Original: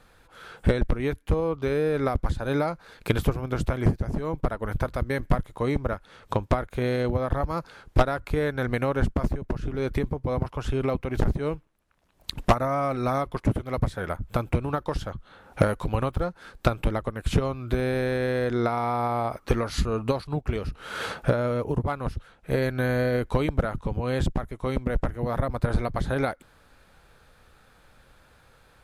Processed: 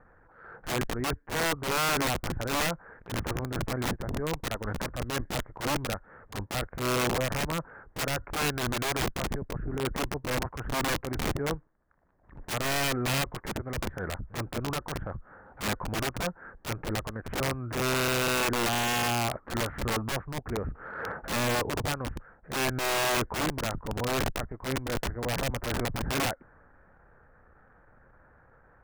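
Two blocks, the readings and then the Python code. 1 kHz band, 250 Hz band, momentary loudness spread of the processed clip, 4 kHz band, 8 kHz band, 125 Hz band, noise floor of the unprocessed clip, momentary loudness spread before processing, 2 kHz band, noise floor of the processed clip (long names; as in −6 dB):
−2.0 dB, −5.5 dB, 10 LU, +7.5 dB, +12.5 dB, −7.0 dB, −58 dBFS, 6 LU, +2.5 dB, −59 dBFS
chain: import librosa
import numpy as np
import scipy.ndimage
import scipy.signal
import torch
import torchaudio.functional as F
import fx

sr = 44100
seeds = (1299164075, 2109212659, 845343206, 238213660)

y = scipy.signal.sosfilt(scipy.signal.ellip(4, 1.0, 60, 1800.0, 'lowpass', fs=sr, output='sos'), x)
y = (np.mod(10.0 ** (21.5 / 20.0) * y + 1.0, 2.0) - 1.0) / 10.0 ** (21.5 / 20.0)
y = fx.transient(y, sr, attack_db=-12, sustain_db=1)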